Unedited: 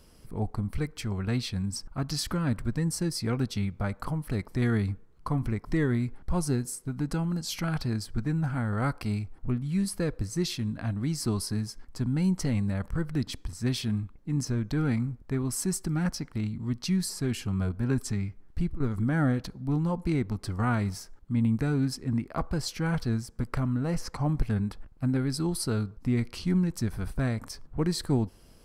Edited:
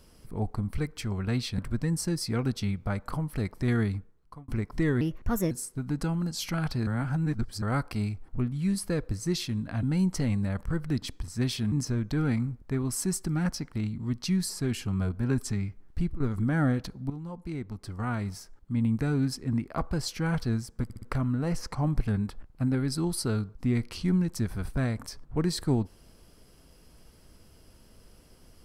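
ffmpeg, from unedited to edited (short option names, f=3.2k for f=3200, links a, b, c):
-filter_complex "[0:a]asplit=13[a][b][c][d][e][f][g][h][i][j][k][l][m];[a]atrim=end=1.582[n];[b]atrim=start=2.518:end=5.42,asetpts=PTS-STARTPTS,afade=t=out:st=2.212:d=0.69[o];[c]atrim=start=5.42:end=5.954,asetpts=PTS-STARTPTS,afade=t=in:d=0.004:c=hsin[p];[d]atrim=start=5.95:end=6.61,asetpts=PTS-STARTPTS,asetrate=58212,aresample=44100[q];[e]atrim=start=6.606:end=7.972[r];[f]atrim=start=7.968:end=8.722,asetpts=PTS-STARTPTS,areverse[s];[g]atrim=start=8.718:end=10.932[t];[h]atrim=start=12.078:end=13.972[u];[i]atrim=start=14.318:end=19.7,asetpts=PTS-STARTPTS,afade=t=out:st=5.378:d=0.004:c=hsin:silence=0.223872[v];[j]atrim=start=19.7:end=23.502,asetpts=PTS-STARTPTS,afade=t=in:d=2.08:silence=0.223872[w];[k]atrim=start=23.438:end=23.502[x];[l]atrim=start=23.438:end=23.502[y];[m]atrim=start=23.438[z];[o][p]concat=n=2:v=0:a=1[aa];[n][aa]acrossfade=d=0.004:c1=hsin:c2=hsin[ab];[ab][q]acrossfade=d=0.004:c1=hsin:c2=hsin[ac];[ac][r]acrossfade=d=0.004:c1=hsin:c2=hsin[ad];[ad][s]acrossfade=d=0.004:c1=hsin:c2=hsin[ae];[ae][t]acrossfade=d=0.004:c1=hsin:c2=hsin[af];[af][u]acrossfade=d=0.004:c1=hsin:c2=hsin[ag];[v][w]concat=n=2:v=0:a=1[ah];[ag][ah]acrossfade=d=0.004:c1=hsin:c2=hsin[ai];[ai][x]acrossfade=d=0.004:c1=hsin:c2=hsin[aj];[aj][y]acrossfade=d=0.004:c1=hsin:c2=hsin[ak];[ak][z]acrossfade=d=0.004:c1=hsin:c2=hsin"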